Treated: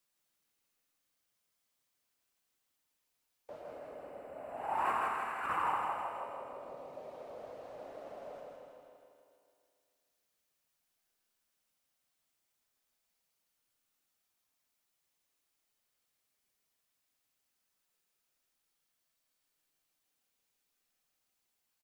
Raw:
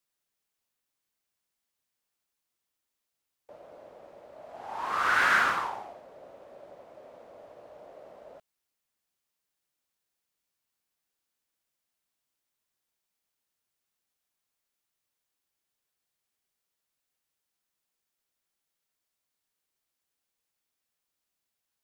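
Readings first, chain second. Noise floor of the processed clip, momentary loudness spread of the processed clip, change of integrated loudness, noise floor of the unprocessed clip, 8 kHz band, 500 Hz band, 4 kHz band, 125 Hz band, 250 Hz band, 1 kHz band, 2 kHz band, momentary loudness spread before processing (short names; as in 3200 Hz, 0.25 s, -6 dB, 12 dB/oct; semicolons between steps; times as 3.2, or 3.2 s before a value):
-82 dBFS, 17 LU, -13.0 dB, -85 dBFS, under -10 dB, -0.5 dB, -15.5 dB, -4.5 dB, -3.5 dB, -4.0 dB, -15.0 dB, 19 LU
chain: reverb removal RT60 1.9 s; spectral gain 3.63–6, 3000–7200 Hz -14 dB; negative-ratio compressor -34 dBFS, ratio -0.5; feedback echo 0.16 s, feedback 56%, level -3 dB; Schroeder reverb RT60 2.4 s, combs from 26 ms, DRR 2.5 dB; gain -3 dB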